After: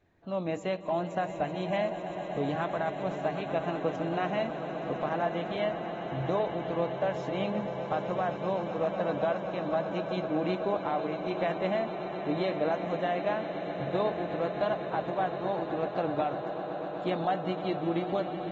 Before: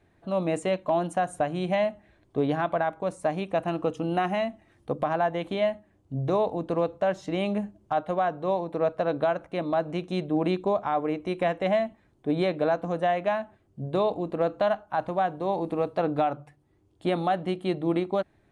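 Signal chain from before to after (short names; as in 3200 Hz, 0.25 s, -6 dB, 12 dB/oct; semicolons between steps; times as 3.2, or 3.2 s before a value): swelling echo 0.126 s, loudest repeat 8, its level -14.5 dB; gain -5.5 dB; AAC 24 kbps 48000 Hz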